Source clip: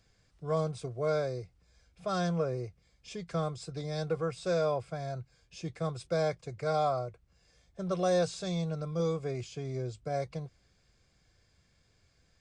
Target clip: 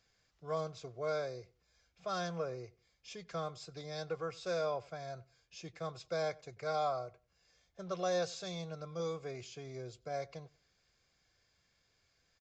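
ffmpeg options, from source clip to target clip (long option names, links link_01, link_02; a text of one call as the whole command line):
ffmpeg -i in.wav -filter_complex "[0:a]lowshelf=frequency=370:gain=-11,asplit=2[link_01][link_02];[link_02]adelay=94,lowpass=frequency=2900:poles=1,volume=-22.5dB,asplit=2[link_03][link_04];[link_04]adelay=94,lowpass=frequency=2900:poles=1,volume=0.25[link_05];[link_03][link_05]amix=inputs=2:normalize=0[link_06];[link_01][link_06]amix=inputs=2:normalize=0,aresample=16000,aresample=44100,volume=-2.5dB" out.wav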